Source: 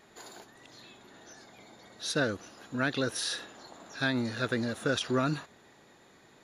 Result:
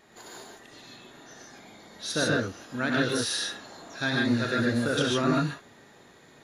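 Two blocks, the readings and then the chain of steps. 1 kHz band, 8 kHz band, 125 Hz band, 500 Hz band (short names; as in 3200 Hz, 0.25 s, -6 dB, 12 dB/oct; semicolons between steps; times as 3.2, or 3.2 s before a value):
+4.5 dB, +4.5 dB, +5.0 dB, +4.0 dB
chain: non-linear reverb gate 0.17 s rising, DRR -2.5 dB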